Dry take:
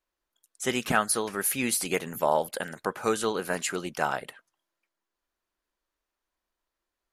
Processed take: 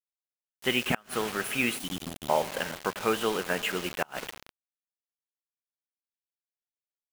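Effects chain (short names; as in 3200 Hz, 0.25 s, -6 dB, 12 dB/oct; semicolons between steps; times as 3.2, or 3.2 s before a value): elliptic low-pass 11000 Hz; resonant high shelf 3900 Hz -10 dB, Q 3; Schroeder reverb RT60 4 s, combs from 33 ms, DRR 12.5 dB; spectral delete 1.79–2.29, 350–2900 Hz; bit-crush 6-bit; flipped gate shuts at -10 dBFS, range -31 dB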